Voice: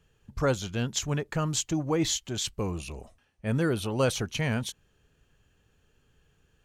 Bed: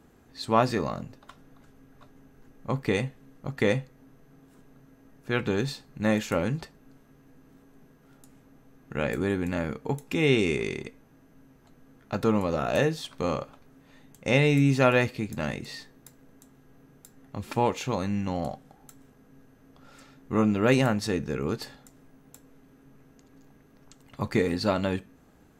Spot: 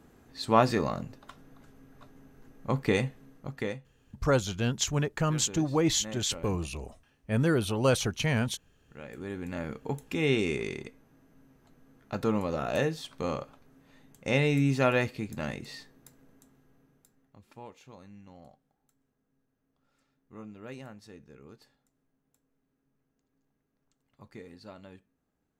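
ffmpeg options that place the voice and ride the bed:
-filter_complex "[0:a]adelay=3850,volume=1.12[s0];[1:a]volume=4.22,afade=t=out:st=3.2:d=0.59:silence=0.149624,afade=t=in:st=9.08:d=0.73:silence=0.237137,afade=t=out:st=16.21:d=1.21:silence=0.125893[s1];[s0][s1]amix=inputs=2:normalize=0"

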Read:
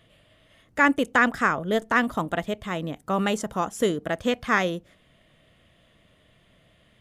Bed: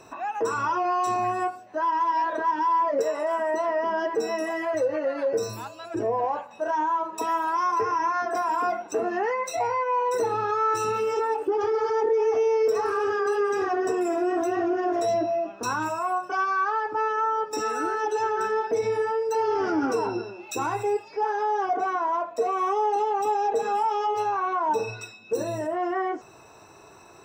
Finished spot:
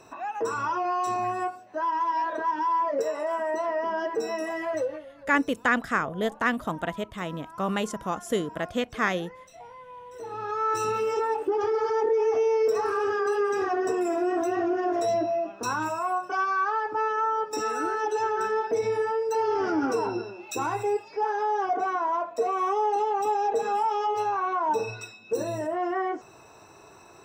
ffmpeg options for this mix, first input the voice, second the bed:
-filter_complex "[0:a]adelay=4500,volume=0.668[s0];[1:a]volume=6.68,afade=t=out:st=4.79:d=0.26:silence=0.133352,afade=t=in:st=10.14:d=0.65:silence=0.112202[s1];[s0][s1]amix=inputs=2:normalize=0"

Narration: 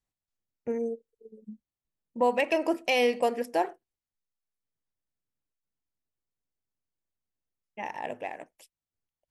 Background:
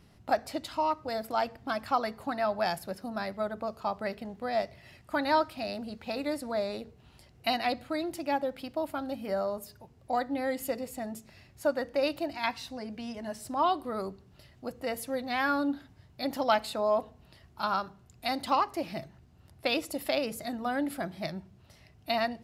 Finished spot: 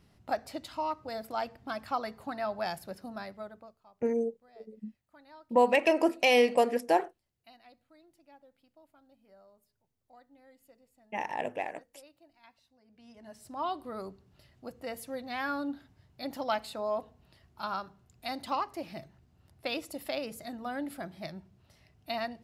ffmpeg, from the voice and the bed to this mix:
-filter_complex "[0:a]adelay=3350,volume=1.19[s0];[1:a]volume=7.94,afade=t=out:st=3.05:d=0.74:silence=0.0668344,afade=t=in:st=12.84:d=1.02:silence=0.0749894[s1];[s0][s1]amix=inputs=2:normalize=0"

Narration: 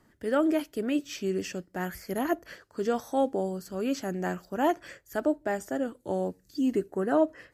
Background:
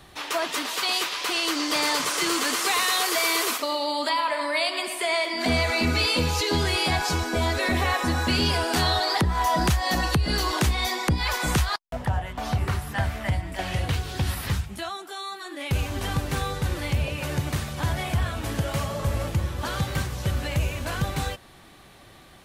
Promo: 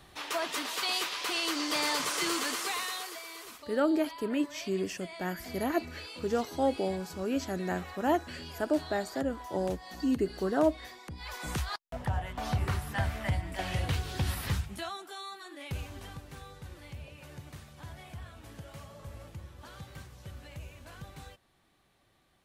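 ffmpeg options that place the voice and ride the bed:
-filter_complex "[0:a]adelay=3450,volume=0.794[s0];[1:a]volume=3.35,afade=t=out:st=2.28:d=0.95:silence=0.16788,afade=t=in:st=11.09:d=1.19:silence=0.149624,afade=t=out:st=14.75:d=1.46:silence=0.188365[s1];[s0][s1]amix=inputs=2:normalize=0"

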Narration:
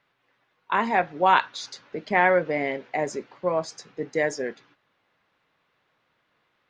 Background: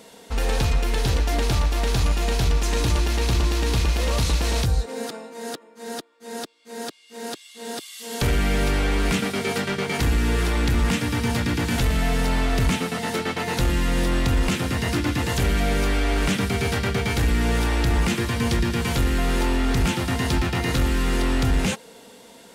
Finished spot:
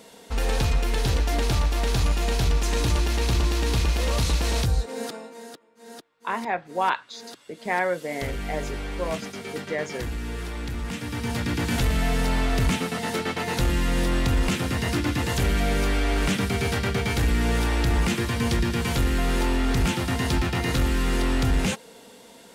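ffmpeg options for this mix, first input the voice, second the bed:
-filter_complex "[0:a]adelay=5550,volume=0.562[s0];[1:a]volume=2.37,afade=t=out:st=5.26:d=0.22:silence=0.354813,afade=t=in:st=10.88:d=0.81:silence=0.354813[s1];[s0][s1]amix=inputs=2:normalize=0"

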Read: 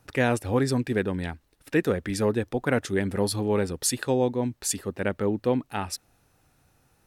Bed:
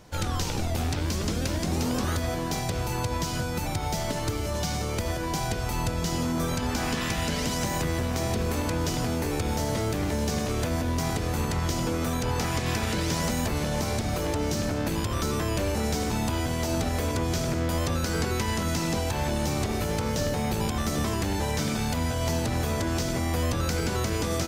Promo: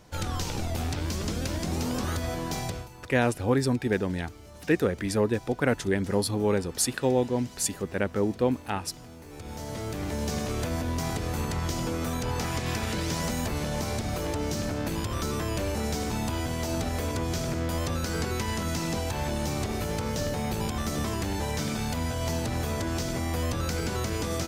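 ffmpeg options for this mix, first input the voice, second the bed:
-filter_complex "[0:a]adelay=2950,volume=0.944[s0];[1:a]volume=4.73,afade=t=out:st=2.66:d=0.23:silence=0.158489,afade=t=in:st=9.26:d=1.05:silence=0.158489[s1];[s0][s1]amix=inputs=2:normalize=0"

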